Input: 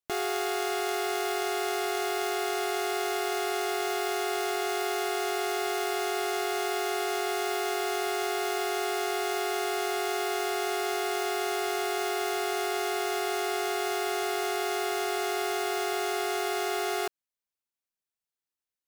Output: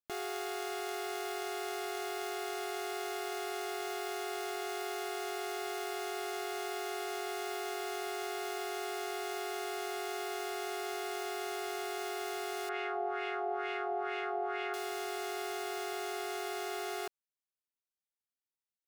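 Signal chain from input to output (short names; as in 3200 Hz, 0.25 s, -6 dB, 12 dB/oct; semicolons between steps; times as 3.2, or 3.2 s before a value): 12.69–14.74 LFO low-pass sine 2.2 Hz 720–2600 Hz; gain -8.5 dB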